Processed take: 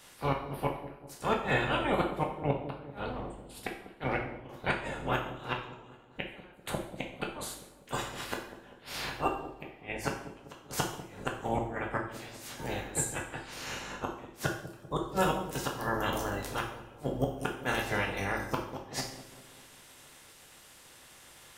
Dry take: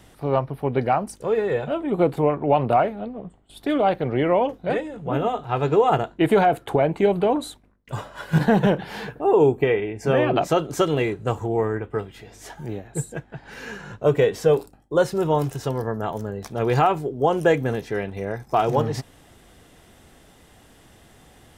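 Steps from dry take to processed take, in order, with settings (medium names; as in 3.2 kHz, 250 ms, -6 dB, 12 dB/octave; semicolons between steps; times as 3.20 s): spectral peaks clipped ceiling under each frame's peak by 22 dB; inverted gate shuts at -10 dBFS, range -35 dB; on a send: feedback echo behind a low-pass 196 ms, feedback 51%, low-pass 600 Hz, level -10.5 dB; on the sum: two-slope reverb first 0.59 s, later 2.7 s, from -27 dB, DRR 0 dB; trim -6.5 dB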